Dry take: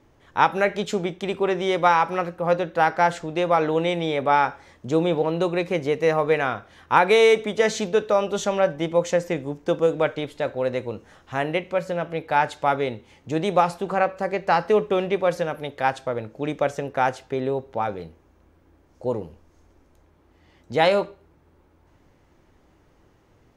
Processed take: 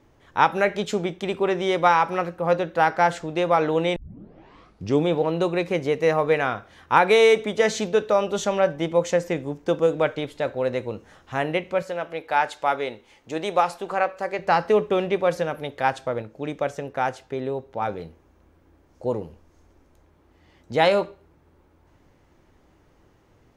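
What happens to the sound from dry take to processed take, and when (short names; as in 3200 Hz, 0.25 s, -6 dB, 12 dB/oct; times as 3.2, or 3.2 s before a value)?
3.96 tape start 1.12 s
11.82–14.39 bell 110 Hz -13 dB 2.5 oct
16.22–17.82 gain -3 dB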